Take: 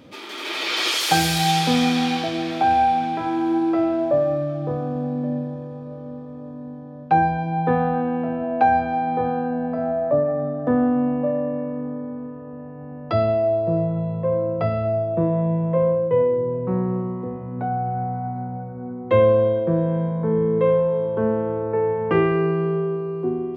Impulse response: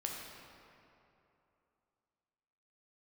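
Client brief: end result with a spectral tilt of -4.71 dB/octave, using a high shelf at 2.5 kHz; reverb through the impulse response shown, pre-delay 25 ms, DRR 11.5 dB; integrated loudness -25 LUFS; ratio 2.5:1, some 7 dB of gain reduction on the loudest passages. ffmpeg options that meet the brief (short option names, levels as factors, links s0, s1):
-filter_complex "[0:a]highshelf=f=2500:g=5.5,acompressor=threshold=0.0794:ratio=2.5,asplit=2[s0][s1];[1:a]atrim=start_sample=2205,adelay=25[s2];[s1][s2]afir=irnorm=-1:irlink=0,volume=0.237[s3];[s0][s3]amix=inputs=2:normalize=0,volume=0.944"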